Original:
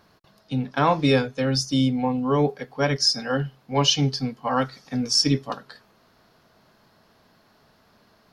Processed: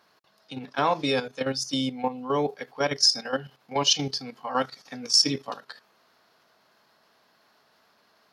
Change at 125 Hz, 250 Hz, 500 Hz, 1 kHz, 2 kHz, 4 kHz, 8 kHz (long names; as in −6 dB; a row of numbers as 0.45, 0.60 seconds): −12.5, −8.0, −3.5, −3.0, −3.0, −0.5, +0.5 decibels